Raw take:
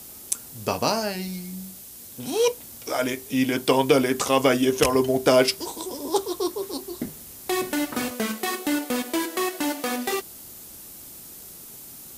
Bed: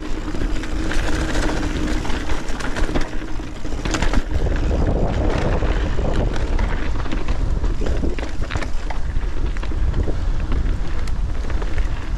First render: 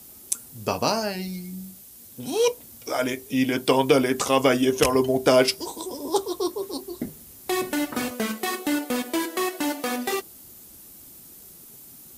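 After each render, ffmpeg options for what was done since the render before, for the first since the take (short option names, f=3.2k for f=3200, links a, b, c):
-af "afftdn=nr=6:nf=-43"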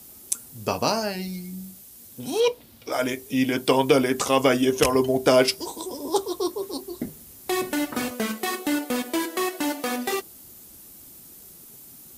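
-filter_complex "[0:a]asettb=1/sr,asplit=3[a][b][c];[a]atrim=end=2.404[d];[b]atrim=start=2.4:end=2.92,asetpts=PTS-STARTPTS,afade=t=in:d=0.004:c=qsin,afade=t=out:st=0.516:d=0.004:c=qsin,highshelf=f=5.2k:t=q:w=1.5:g=-8[e];[c]atrim=start=2.916[f];[d][e]acrossfade=d=0.004:c1=hsin:c2=qsin[g];[g][f]acrossfade=d=0.004:c1=qsin:c2=hsin"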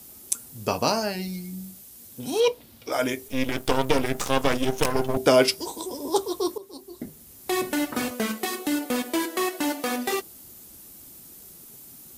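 -filter_complex "[0:a]asettb=1/sr,asplit=3[a][b][c];[a]atrim=end=3.284[d];[b]atrim=start=3.28:end=5.17,asetpts=PTS-STARTPTS,afade=t=in:d=0.004:c=qsin,afade=t=out:st=1.886:d=0.004:c=qsin,aeval=exprs='max(val(0),0)':c=same[e];[c]atrim=start=5.166[f];[d][e]acrossfade=d=0.004:c1=hsin:c2=qsin[g];[g][f]acrossfade=d=0.004:c1=qsin:c2=hsin,asettb=1/sr,asplit=3[h][i][j];[h]atrim=end=8.454[k];[i]atrim=start=8.45:end=8.86,asetpts=PTS-STARTPTS,afade=t=in:d=0.004:c=qsin,afade=t=out:st=0.406:d=0.004:c=qsin,acrossover=split=380|3000[l][m][n];[m]acompressor=threshold=-30dB:ratio=6:attack=3.2:release=140:knee=2.83:detection=peak[o];[l][o][n]amix=inputs=3:normalize=0[p];[j]atrim=start=8.856[q];[k][p]acrossfade=d=0.004:c1=hsin:c2=qsin[r];[r][q]acrossfade=d=0.004:c1=qsin:c2=hsin,asplit=2[s][t];[s]atrim=end=6.58,asetpts=PTS-STARTPTS,afade=t=out:st=6.576:d=0.004:c=hsin:silence=0.188365[u];[t]atrim=start=6.58,asetpts=PTS-STARTPTS,afade=t=in:d=1:silence=0.188365[v];[u][v]concat=n=2:v=0:a=1"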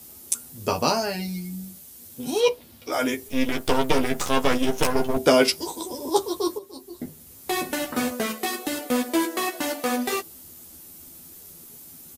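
-filter_complex "[0:a]asplit=2[a][b];[b]adelay=12,volume=-4.5dB[c];[a][c]amix=inputs=2:normalize=0"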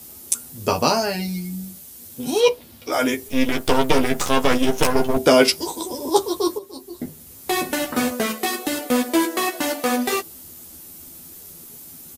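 -af "volume=4dB,alimiter=limit=-3dB:level=0:latency=1"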